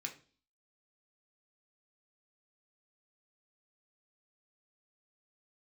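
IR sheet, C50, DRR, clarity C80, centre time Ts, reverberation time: 13.0 dB, 1.5 dB, 18.0 dB, 12 ms, 0.40 s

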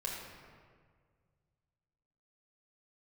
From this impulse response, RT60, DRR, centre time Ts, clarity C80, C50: 1.8 s, −3.5 dB, 84 ms, 2.5 dB, 0.5 dB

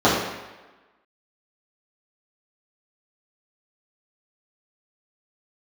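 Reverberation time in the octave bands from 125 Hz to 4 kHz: 0.90, 1.1, 1.2, 1.2, 1.2, 1.0 seconds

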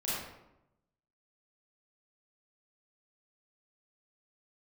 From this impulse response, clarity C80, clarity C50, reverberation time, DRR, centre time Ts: 1.0 dB, −3.0 dB, 0.90 s, −9.5 dB, 85 ms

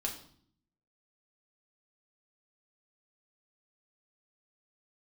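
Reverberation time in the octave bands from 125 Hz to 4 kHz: 0.95, 0.90, 0.60, 0.55, 0.50, 0.55 seconds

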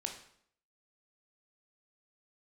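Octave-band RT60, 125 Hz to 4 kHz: 0.60, 0.70, 0.65, 0.65, 0.60, 0.55 seconds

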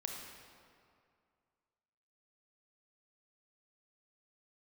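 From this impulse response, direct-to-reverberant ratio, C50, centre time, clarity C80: 0.5 dB, 2.0 dB, 80 ms, 3.0 dB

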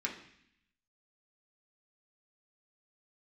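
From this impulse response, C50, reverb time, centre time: 8.5 dB, 0.65 s, 20 ms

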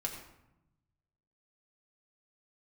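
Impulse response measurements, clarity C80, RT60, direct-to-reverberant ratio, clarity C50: 7.0 dB, 0.85 s, −0.5 dB, 6.0 dB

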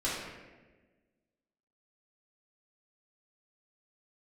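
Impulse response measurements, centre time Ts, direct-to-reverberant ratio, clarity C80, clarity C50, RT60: 81 ms, −8.5 dB, 2.5 dB, 0.0 dB, 1.3 s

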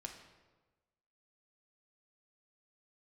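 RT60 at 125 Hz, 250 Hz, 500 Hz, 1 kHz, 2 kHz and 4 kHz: 1.4, 1.3, 1.3, 1.2, 1.0, 0.85 seconds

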